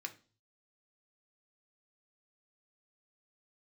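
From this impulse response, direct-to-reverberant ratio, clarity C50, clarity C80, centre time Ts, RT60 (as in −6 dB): 4.5 dB, 16.0 dB, 22.0 dB, 6 ms, 0.40 s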